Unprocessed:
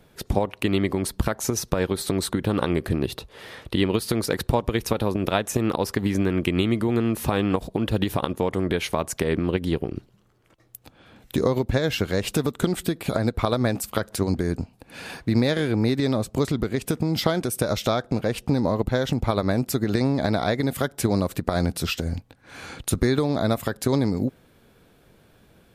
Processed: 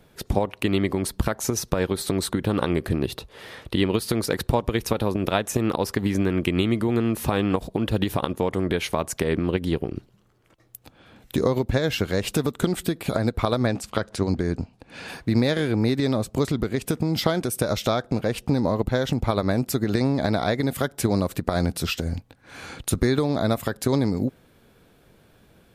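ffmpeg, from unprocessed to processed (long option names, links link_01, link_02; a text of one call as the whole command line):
ffmpeg -i in.wav -filter_complex "[0:a]asettb=1/sr,asplit=3[link_01][link_02][link_03];[link_01]atrim=end=13.664[link_04];[link_02]atrim=start=13.66:end=15.08,asetpts=PTS-STARTPTS,afade=type=in:duration=0.004:curve=qsin,afade=type=out:start_time=1.416:duration=0.004:curve=qsin,lowpass=6900[link_05];[link_03]atrim=start=15.076[link_06];[link_04][link_05]acrossfade=duration=0.004:curve1=hsin:curve2=qsin[link_07];[link_07][link_06]acrossfade=duration=0.004:curve1=qsin:curve2=hsin" out.wav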